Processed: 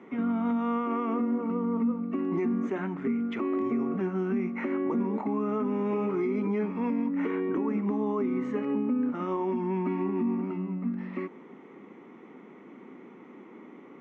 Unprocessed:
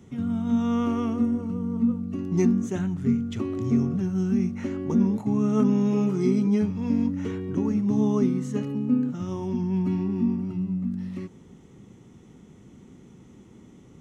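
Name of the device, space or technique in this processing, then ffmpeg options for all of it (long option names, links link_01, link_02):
laptop speaker: -af "highpass=frequency=260:width=0.5412,highpass=frequency=260:width=1.3066,equalizer=frequency=1100:width_type=o:width=0.56:gain=6,equalizer=frequency=2200:width_type=o:width=0.53:gain=11,alimiter=level_in=2.5dB:limit=-24dB:level=0:latency=1:release=132,volume=-2.5dB,lowpass=1600,volume=6dB"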